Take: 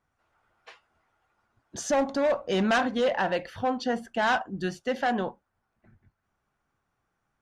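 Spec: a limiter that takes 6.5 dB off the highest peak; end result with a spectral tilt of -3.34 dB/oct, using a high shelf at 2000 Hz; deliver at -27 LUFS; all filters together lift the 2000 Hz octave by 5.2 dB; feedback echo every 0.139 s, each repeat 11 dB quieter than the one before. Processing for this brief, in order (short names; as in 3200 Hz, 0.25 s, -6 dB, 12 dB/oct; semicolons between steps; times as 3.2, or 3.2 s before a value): high shelf 2000 Hz +5.5 dB; bell 2000 Hz +4 dB; limiter -17.5 dBFS; feedback echo 0.139 s, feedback 28%, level -11 dB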